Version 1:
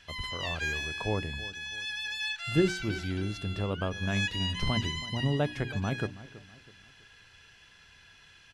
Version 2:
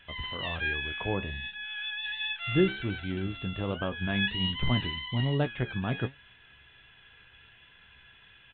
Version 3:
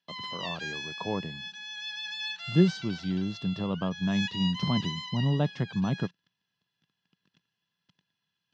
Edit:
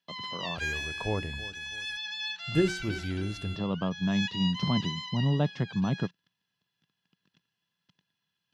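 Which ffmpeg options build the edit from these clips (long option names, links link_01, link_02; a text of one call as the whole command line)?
ffmpeg -i take0.wav -i take1.wav -i take2.wav -filter_complex "[0:a]asplit=2[link_01][link_02];[2:a]asplit=3[link_03][link_04][link_05];[link_03]atrim=end=0.582[link_06];[link_01]atrim=start=0.578:end=1.972[link_07];[link_04]atrim=start=1.968:end=2.552[link_08];[link_02]atrim=start=2.548:end=3.562[link_09];[link_05]atrim=start=3.558[link_10];[link_06][link_07]acrossfade=duration=0.004:curve1=hsin:curve2=hsin[link_11];[link_11][link_08]acrossfade=duration=0.004:curve1=hsin:curve2=hsin[link_12];[link_12][link_09]acrossfade=duration=0.004:curve1=hsin:curve2=hsin[link_13];[link_13][link_10]acrossfade=duration=0.004:curve1=hsin:curve2=hsin" out.wav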